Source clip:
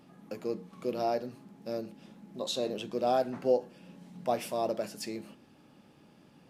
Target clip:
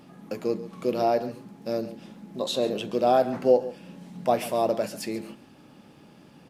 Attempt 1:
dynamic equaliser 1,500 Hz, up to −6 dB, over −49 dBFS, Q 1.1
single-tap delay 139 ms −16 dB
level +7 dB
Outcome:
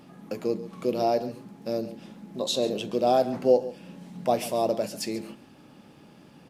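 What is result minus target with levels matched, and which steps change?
8,000 Hz band +4.0 dB
change: dynamic equaliser 5,900 Hz, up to −6 dB, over −49 dBFS, Q 1.1

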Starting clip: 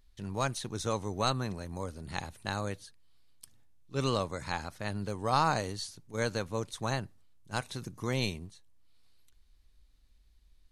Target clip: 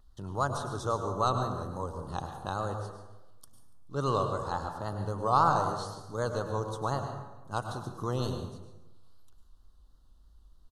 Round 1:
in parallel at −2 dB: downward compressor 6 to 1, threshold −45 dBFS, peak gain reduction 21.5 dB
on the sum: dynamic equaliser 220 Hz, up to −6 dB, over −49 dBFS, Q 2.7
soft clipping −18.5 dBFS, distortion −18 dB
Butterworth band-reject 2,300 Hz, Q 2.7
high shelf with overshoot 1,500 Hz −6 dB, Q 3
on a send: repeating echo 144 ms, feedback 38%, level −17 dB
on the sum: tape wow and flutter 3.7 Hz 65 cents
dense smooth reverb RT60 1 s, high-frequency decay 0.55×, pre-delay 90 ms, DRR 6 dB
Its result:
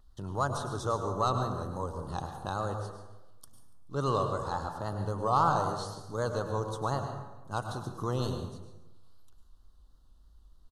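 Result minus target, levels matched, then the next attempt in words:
soft clipping: distortion +21 dB; downward compressor: peak gain reduction −7 dB
in parallel at −2 dB: downward compressor 6 to 1, threshold −53.5 dBFS, peak gain reduction 28.5 dB
on the sum: dynamic equaliser 220 Hz, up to −6 dB, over −49 dBFS, Q 2.7
soft clipping −6.5 dBFS, distortion −39 dB
Butterworth band-reject 2,300 Hz, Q 2.7
high shelf with overshoot 1,500 Hz −6 dB, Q 3
on a send: repeating echo 144 ms, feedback 38%, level −17 dB
on the sum: tape wow and flutter 3.7 Hz 65 cents
dense smooth reverb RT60 1 s, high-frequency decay 0.55×, pre-delay 90 ms, DRR 6 dB

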